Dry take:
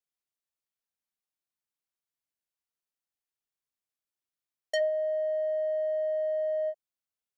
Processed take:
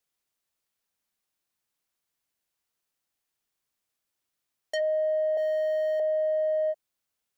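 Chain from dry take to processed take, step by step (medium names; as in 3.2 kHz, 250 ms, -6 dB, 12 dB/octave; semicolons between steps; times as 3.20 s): 5.37–6.00 s: tilt EQ +5 dB/octave; peak limiter -32 dBFS, peak gain reduction 10.5 dB; trim +9 dB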